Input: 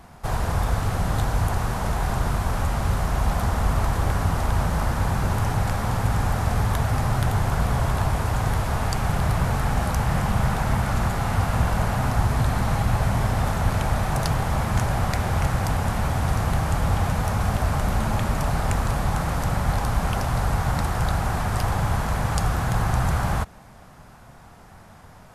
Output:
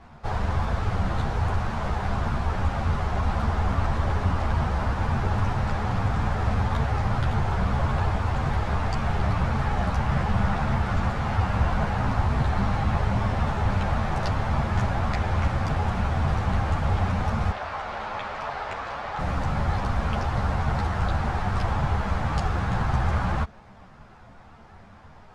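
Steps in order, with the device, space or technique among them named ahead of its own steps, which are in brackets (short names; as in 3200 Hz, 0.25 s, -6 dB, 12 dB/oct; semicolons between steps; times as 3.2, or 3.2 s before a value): 17.51–19.19 three-band isolator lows -20 dB, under 430 Hz, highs -12 dB, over 5600 Hz; string-machine ensemble chorus (ensemble effect; LPF 4100 Hz 12 dB/oct); gain +1.5 dB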